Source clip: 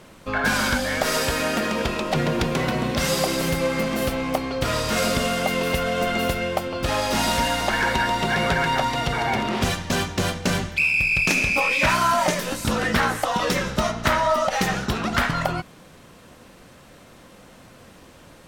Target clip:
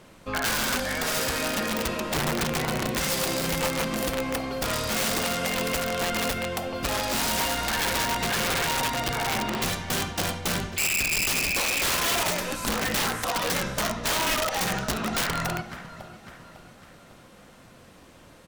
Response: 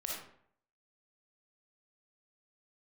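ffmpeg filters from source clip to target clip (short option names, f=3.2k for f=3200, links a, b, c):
-filter_complex "[0:a]aecho=1:1:551|1102|1653|2204:0.158|0.0729|0.0335|0.0154,asplit=2[a][b];[1:a]atrim=start_sample=2205,asetrate=48510,aresample=44100[c];[b][c]afir=irnorm=-1:irlink=0,volume=-8dB[d];[a][d]amix=inputs=2:normalize=0,aeval=exprs='(mod(4.73*val(0)+1,2)-1)/4.73':c=same,volume=-6dB"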